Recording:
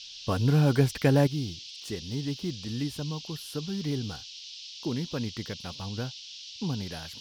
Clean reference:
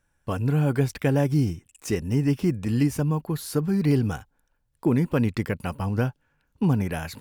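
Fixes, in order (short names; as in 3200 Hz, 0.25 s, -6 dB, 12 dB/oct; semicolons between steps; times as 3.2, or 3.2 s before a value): noise print and reduce 26 dB; gain correction +10 dB, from 1.27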